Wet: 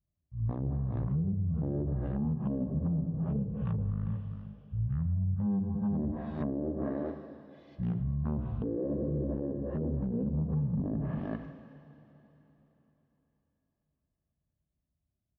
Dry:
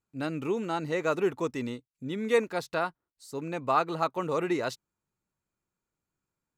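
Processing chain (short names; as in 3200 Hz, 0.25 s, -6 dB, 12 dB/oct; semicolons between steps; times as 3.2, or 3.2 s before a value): Wiener smoothing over 41 samples; on a send at -8 dB: low shelf 330 Hz -7 dB + reverb, pre-delay 3 ms; on the sum: speed mistake 78 rpm record played at 33 rpm; HPF 44 Hz 12 dB/oct; bell 1000 Hz -2 dB 1.2 oct; notches 60/120/180/240/300/360/420 Hz; outdoor echo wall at 68 m, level -12 dB; treble ducked by the level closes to 430 Hz, closed at -28.5 dBFS; compressor 6:1, threshold -33 dBFS, peak gain reduction 12.5 dB; limiter -33 dBFS, peak gain reduction 9.5 dB; gain +8.5 dB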